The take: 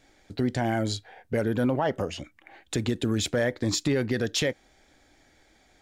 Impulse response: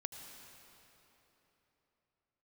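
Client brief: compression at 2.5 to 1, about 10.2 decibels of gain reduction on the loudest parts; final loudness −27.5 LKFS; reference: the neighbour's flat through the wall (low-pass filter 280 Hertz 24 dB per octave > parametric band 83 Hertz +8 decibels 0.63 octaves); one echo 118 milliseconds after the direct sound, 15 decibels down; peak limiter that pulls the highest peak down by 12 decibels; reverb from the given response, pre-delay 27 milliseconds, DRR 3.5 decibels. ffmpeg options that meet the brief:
-filter_complex "[0:a]acompressor=threshold=-37dB:ratio=2.5,alimiter=level_in=10dB:limit=-24dB:level=0:latency=1,volume=-10dB,aecho=1:1:118:0.178,asplit=2[link_01][link_02];[1:a]atrim=start_sample=2205,adelay=27[link_03];[link_02][link_03]afir=irnorm=-1:irlink=0,volume=-1.5dB[link_04];[link_01][link_04]amix=inputs=2:normalize=0,lowpass=frequency=280:width=0.5412,lowpass=frequency=280:width=1.3066,equalizer=frequency=83:width_type=o:width=0.63:gain=8,volume=17.5dB"

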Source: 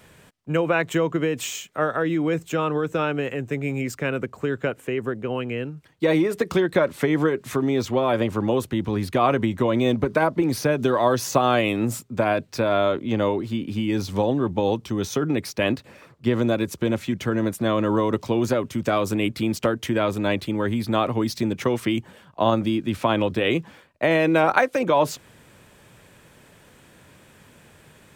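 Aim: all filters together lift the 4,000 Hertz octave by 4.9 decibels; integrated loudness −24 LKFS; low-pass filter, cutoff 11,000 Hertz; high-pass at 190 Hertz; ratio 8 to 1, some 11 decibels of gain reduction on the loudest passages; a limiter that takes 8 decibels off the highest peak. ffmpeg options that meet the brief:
ffmpeg -i in.wav -af "highpass=190,lowpass=11000,equalizer=frequency=4000:width_type=o:gain=6.5,acompressor=threshold=-25dB:ratio=8,volume=7dB,alimiter=limit=-13dB:level=0:latency=1" out.wav

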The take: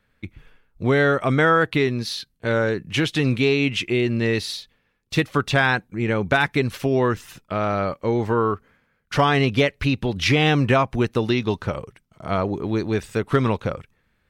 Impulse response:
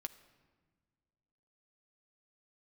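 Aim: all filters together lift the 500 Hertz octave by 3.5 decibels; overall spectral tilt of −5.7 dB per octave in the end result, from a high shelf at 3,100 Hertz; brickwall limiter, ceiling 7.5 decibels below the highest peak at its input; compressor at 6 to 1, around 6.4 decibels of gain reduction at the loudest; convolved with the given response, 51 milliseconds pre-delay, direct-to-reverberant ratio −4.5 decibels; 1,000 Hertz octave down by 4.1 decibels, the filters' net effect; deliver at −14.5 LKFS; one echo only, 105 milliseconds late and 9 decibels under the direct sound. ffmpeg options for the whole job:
-filter_complex "[0:a]equalizer=frequency=500:width_type=o:gain=6,equalizer=frequency=1000:width_type=o:gain=-7,highshelf=frequency=3100:gain=-8,acompressor=threshold=-19dB:ratio=6,alimiter=limit=-17dB:level=0:latency=1,aecho=1:1:105:0.355,asplit=2[link_01][link_02];[1:a]atrim=start_sample=2205,adelay=51[link_03];[link_02][link_03]afir=irnorm=-1:irlink=0,volume=7.5dB[link_04];[link_01][link_04]amix=inputs=2:normalize=0,volume=6.5dB"

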